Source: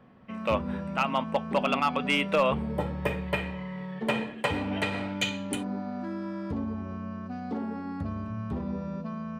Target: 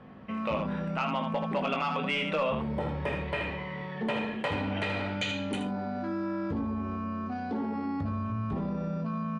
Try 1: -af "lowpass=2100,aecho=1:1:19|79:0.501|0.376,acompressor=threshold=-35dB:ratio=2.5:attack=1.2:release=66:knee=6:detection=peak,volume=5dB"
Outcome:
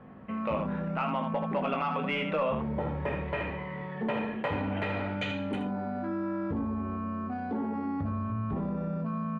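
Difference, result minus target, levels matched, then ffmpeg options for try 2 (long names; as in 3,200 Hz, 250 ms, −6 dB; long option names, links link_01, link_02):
4,000 Hz band −5.5 dB
-af "lowpass=5200,aecho=1:1:19|79:0.501|0.376,acompressor=threshold=-35dB:ratio=2.5:attack=1.2:release=66:knee=6:detection=peak,volume=5dB"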